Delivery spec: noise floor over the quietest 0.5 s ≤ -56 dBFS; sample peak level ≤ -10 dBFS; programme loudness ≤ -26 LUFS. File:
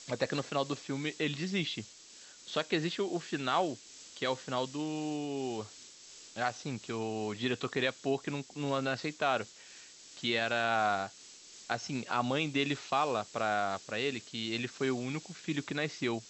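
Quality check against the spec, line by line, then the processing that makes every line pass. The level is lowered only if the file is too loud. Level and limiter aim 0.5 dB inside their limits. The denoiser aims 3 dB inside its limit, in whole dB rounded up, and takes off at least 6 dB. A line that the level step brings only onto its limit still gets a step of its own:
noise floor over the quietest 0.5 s -54 dBFS: fail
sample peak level -14.0 dBFS: pass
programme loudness -34.0 LUFS: pass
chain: noise reduction 6 dB, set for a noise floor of -54 dBFS

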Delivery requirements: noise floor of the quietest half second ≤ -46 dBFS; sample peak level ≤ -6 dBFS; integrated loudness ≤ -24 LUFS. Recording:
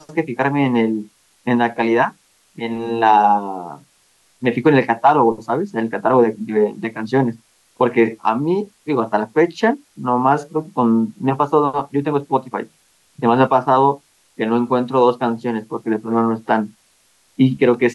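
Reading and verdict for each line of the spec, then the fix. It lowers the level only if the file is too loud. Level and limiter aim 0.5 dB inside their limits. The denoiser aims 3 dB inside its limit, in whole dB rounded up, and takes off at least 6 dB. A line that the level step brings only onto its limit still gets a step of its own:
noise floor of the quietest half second -58 dBFS: pass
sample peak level -3.0 dBFS: fail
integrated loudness -18.0 LUFS: fail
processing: trim -6.5 dB

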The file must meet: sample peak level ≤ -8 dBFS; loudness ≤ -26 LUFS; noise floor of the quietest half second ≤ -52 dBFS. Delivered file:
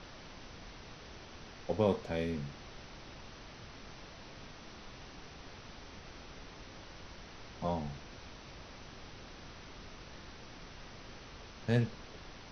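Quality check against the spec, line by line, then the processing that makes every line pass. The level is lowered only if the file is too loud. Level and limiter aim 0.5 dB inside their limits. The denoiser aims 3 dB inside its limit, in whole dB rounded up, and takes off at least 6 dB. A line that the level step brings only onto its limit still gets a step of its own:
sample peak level -17.5 dBFS: pass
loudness -42.0 LUFS: pass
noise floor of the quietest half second -50 dBFS: fail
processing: noise reduction 6 dB, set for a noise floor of -50 dBFS

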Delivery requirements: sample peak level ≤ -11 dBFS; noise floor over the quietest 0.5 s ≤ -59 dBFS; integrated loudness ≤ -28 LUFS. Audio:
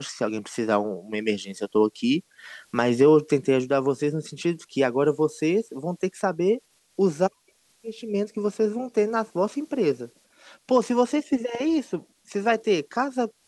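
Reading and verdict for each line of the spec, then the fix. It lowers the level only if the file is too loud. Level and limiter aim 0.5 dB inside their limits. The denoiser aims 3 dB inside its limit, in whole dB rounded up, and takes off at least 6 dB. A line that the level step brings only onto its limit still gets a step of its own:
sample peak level -7.0 dBFS: fail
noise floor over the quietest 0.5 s -64 dBFS: pass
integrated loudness -24.5 LUFS: fail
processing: trim -4 dB; peak limiter -11.5 dBFS

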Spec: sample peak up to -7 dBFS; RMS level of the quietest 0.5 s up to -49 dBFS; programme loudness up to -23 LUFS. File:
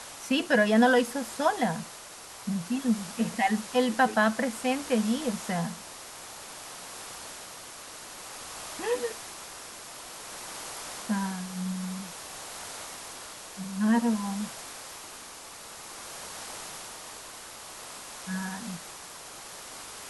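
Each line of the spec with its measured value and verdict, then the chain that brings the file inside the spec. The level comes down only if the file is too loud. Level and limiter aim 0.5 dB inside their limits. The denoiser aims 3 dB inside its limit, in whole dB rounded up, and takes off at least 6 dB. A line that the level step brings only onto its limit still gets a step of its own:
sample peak -10.0 dBFS: pass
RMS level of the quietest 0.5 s -45 dBFS: fail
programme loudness -30.5 LUFS: pass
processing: noise reduction 7 dB, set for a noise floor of -45 dBFS

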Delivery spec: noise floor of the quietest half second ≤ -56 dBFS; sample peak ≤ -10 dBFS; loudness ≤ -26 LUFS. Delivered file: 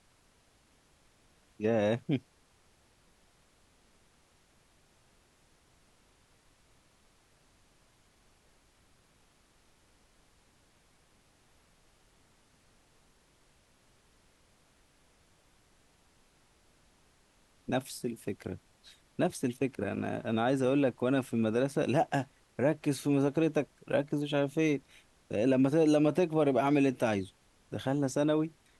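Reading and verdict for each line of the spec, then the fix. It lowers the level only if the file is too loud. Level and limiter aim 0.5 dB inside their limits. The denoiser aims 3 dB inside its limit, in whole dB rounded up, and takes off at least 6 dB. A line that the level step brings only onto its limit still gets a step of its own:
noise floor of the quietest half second -67 dBFS: pass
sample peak -15.0 dBFS: pass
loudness -30.5 LUFS: pass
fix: none needed

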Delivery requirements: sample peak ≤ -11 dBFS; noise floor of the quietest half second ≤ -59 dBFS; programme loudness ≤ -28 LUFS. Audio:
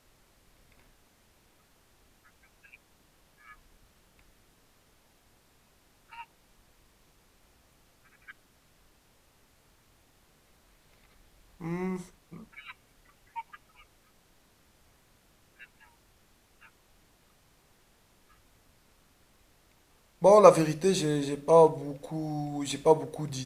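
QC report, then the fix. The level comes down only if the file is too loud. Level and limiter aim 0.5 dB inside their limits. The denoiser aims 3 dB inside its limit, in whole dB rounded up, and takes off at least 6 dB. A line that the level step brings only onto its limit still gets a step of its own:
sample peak -3.5 dBFS: fail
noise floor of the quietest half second -64 dBFS: pass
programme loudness -25.0 LUFS: fail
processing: trim -3.5 dB; peak limiter -11.5 dBFS

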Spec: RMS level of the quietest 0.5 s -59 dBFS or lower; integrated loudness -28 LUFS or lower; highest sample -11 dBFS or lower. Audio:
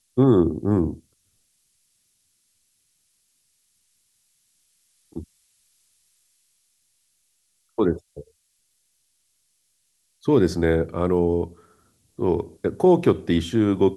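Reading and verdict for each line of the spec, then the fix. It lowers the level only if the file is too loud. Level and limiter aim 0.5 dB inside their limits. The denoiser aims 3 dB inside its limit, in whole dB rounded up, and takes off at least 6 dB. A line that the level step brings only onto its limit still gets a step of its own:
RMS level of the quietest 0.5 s -69 dBFS: pass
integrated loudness -21.5 LUFS: fail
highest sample -6.0 dBFS: fail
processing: trim -7 dB

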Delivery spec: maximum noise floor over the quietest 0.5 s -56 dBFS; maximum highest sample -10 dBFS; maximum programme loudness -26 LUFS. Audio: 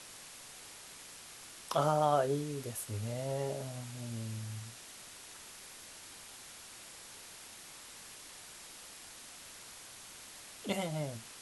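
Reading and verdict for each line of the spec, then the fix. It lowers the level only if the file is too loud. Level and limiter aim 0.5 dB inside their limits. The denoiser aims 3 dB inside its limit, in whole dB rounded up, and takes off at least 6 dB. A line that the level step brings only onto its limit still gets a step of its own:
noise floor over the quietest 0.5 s -52 dBFS: fail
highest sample -16.5 dBFS: pass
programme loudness -39.5 LUFS: pass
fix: noise reduction 7 dB, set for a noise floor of -52 dBFS

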